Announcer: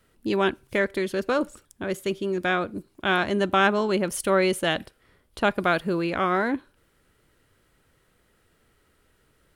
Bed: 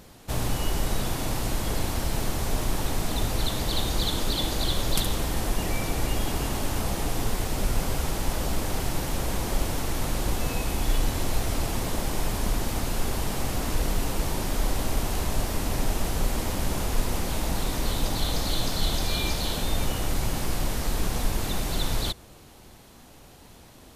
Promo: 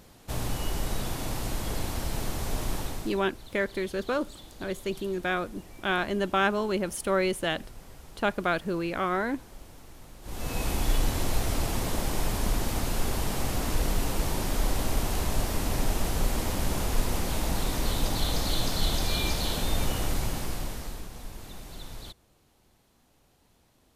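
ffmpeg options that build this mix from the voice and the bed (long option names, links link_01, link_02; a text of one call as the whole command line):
ffmpeg -i stem1.wav -i stem2.wav -filter_complex "[0:a]adelay=2800,volume=-4.5dB[link_01];[1:a]volume=16dB,afade=type=out:start_time=2.74:duration=0.48:silence=0.141254,afade=type=in:start_time=10.22:duration=0.43:silence=0.1,afade=type=out:start_time=20.02:duration=1.06:silence=0.199526[link_02];[link_01][link_02]amix=inputs=2:normalize=0" out.wav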